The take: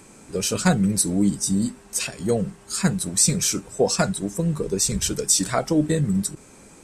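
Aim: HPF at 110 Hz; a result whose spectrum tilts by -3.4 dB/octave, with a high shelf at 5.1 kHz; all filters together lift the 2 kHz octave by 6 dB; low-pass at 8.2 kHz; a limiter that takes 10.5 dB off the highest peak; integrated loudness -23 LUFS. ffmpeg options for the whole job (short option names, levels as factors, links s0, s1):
-af "highpass=110,lowpass=8200,equalizer=f=2000:t=o:g=7,highshelf=f=5100:g=9,volume=0.944,alimiter=limit=0.282:level=0:latency=1"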